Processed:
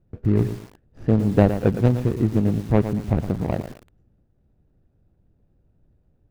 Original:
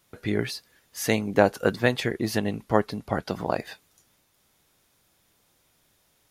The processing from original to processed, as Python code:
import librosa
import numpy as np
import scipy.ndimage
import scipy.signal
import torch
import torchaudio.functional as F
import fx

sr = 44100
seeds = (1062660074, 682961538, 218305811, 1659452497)

y = scipy.signal.medfilt(x, 41)
y = fx.riaa(y, sr, side='playback')
y = fx.echo_crushed(y, sr, ms=114, feedback_pct=35, bits=6, wet_db=-10)